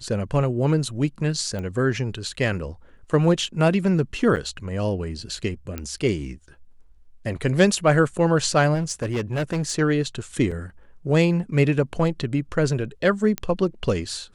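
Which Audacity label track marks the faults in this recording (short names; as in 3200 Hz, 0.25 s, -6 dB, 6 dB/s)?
1.590000	1.590000	pop -20 dBFS
4.360000	4.370000	gap 8.2 ms
5.780000	5.780000	pop -15 dBFS
8.740000	9.720000	clipped -20.5 dBFS
10.510000	10.520000	gap 5.2 ms
13.380000	13.380000	pop -10 dBFS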